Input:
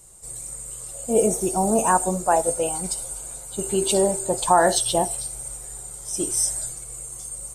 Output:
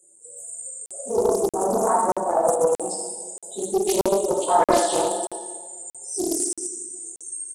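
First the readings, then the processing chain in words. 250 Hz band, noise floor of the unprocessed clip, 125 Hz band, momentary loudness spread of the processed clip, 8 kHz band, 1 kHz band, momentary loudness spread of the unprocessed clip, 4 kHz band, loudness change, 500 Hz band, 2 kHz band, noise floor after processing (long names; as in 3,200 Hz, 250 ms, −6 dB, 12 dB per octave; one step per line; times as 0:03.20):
−1.0 dB, −38 dBFS, −7.5 dB, 14 LU, −4.0 dB, 0.0 dB, 14 LU, −4.0 dB, −0.5 dB, +2.0 dB, −5.5 dB, −57 dBFS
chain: random phases in long frames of 50 ms
gate on every frequency bin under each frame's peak −15 dB strong
in parallel at +3 dB: downward compressor 10 to 1, threshold −31 dBFS, peak gain reduction 20 dB
on the sum: log-companded quantiser 8 bits
four-pole ladder high-pass 270 Hz, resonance 40%
noise reduction from a noise print of the clip's start 7 dB
on a send: single-tap delay 78 ms −7 dB
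on the sum: dense smooth reverb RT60 1.5 s, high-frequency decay 0.85×, DRR −2.5 dB
regular buffer underruns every 0.63 s, samples 2,048, zero, from 0:00.86
highs frequency-modulated by the lows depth 0.42 ms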